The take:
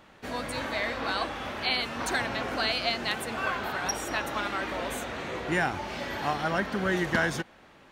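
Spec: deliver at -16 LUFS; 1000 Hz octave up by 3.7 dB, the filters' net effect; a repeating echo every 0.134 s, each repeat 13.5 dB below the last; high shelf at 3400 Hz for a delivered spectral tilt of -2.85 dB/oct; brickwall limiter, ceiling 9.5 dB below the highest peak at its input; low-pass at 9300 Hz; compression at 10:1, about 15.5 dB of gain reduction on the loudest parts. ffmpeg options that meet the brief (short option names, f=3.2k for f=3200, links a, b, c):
-af "lowpass=9.3k,equalizer=f=1k:t=o:g=4,highshelf=f=3.4k:g=8.5,acompressor=threshold=-35dB:ratio=10,alimiter=level_in=8.5dB:limit=-24dB:level=0:latency=1,volume=-8.5dB,aecho=1:1:134|268:0.211|0.0444,volume=25.5dB"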